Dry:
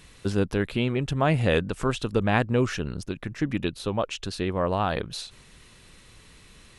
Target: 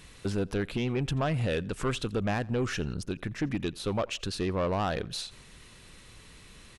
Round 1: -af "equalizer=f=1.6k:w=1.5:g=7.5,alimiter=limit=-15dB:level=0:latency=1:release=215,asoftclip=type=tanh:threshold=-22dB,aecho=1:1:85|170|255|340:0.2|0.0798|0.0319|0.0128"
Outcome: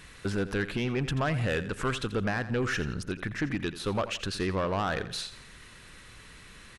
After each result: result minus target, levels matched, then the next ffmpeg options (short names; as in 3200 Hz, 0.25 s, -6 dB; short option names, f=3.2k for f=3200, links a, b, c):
echo-to-direct +11 dB; 2000 Hz band +4.5 dB
-af "equalizer=f=1.6k:w=1.5:g=7.5,alimiter=limit=-15dB:level=0:latency=1:release=215,asoftclip=type=tanh:threshold=-22dB,aecho=1:1:85|170:0.0562|0.0225"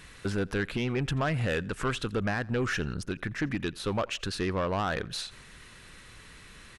2000 Hz band +4.5 dB
-af "alimiter=limit=-15dB:level=0:latency=1:release=215,asoftclip=type=tanh:threshold=-22dB,aecho=1:1:85|170:0.0562|0.0225"